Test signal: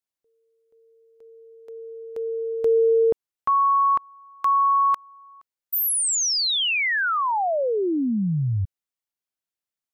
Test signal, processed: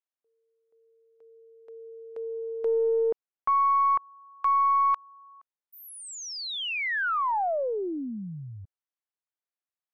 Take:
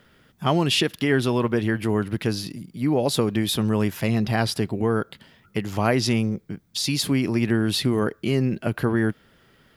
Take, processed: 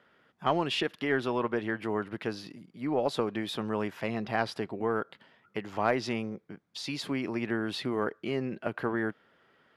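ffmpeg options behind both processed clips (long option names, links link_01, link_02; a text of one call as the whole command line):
ffmpeg -i in.wav -af "bandpass=frequency=960:width_type=q:width=0.59:csg=0,aeval=exprs='0.422*(cos(1*acos(clip(val(0)/0.422,-1,1)))-cos(1*PI/2))+0.0335*(cos(4*acos(clip(val(0)/0.422,-1,1)))-cos(4*PI/2))+0.0188*(cos(5*acos(clip(val(0)/0.422,-1,1)))-cos(5*PI/2))+0.0119*(cos(6*acos(clip(val(0)/0.422,-1,1)))-cos(6*PI/2))+0.00944*(cos(7*acos(clip(val(0)/0.422,-1,1)))-cos(7*PI/2))':channel_layout=same,volume=-4dB" out.wav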